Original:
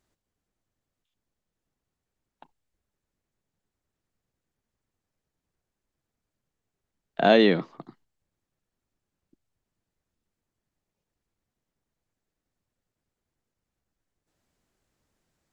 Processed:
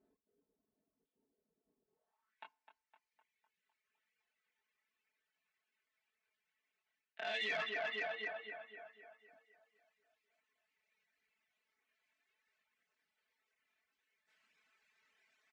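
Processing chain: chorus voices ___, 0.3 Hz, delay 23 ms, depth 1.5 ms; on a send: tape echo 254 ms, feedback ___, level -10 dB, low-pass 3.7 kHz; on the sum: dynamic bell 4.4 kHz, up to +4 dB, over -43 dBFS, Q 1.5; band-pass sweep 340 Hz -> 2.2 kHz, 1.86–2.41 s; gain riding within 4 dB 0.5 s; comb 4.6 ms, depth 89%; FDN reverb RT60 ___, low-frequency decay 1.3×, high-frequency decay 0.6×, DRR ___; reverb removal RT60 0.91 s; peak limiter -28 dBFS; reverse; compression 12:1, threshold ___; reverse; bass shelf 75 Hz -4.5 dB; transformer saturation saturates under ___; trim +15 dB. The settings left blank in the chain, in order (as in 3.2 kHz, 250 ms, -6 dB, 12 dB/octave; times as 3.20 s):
4, 57%, 0.55 s, 12 dB, -50 dBFS, 1.4 kHz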